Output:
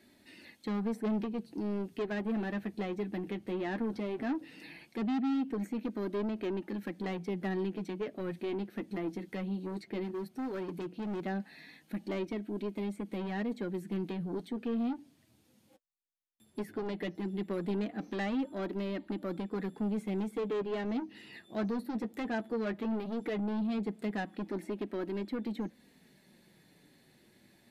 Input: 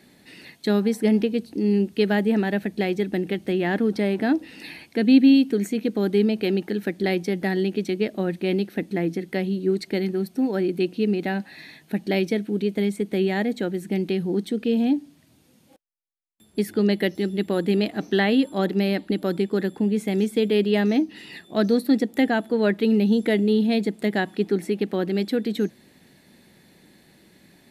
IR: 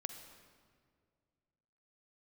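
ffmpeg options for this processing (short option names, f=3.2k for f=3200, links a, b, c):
-filter_complex "[0:a]acrossover=split=2600[a][b];[b]acompressor=threshold=-49dB:ratio=5[c];[a][c]amix=inputs=2:normalize=0,asoftclip=type=tanh:threshold=-21dB,flanger=delay=3.1:depth=6.2:regen=-33:speed=0.16:shape=sinusoidal,asettb=1/sr,asplit=3[d][e][f];[d]atrim=end=10.044[g];[e]atrim=start=10.04:end=11.22,asetpts=PTS-STARTPTS,afade=t=in:d=0.004:c=qsin,afade=t=out:st=1.176:d=0.004:c=qsin,volume=29dB,asoftclip=hard,volume=-29dB[h];[f]atrim=start=11.216[i];[g][h]acrossfade=d=0.004:c1=hsin:c2=qsin[j];[j][i]acrossfade=d=0.004:c1=qsin:c2=hsin,volume=-5dB"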